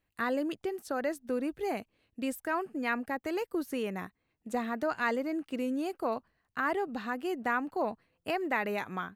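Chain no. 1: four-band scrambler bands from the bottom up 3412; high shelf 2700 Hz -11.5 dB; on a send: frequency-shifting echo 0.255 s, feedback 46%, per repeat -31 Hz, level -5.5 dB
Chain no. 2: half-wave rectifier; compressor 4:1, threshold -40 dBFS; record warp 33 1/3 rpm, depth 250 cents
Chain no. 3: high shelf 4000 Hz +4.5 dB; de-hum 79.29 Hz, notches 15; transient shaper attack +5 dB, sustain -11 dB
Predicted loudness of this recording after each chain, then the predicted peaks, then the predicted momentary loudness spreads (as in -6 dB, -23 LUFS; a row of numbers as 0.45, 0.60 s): -36.5, -46.5, -32.5 LUFS; -23.5, -24.0, -13.5 dBFS; 5, 5, 6 LU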